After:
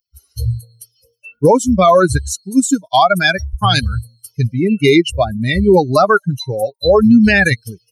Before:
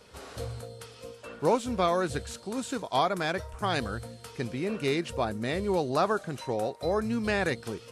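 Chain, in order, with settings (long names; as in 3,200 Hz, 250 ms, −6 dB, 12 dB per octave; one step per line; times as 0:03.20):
spectral dynamics exaggerated over time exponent 3
boost into a limiter +27 dB
level −1 dB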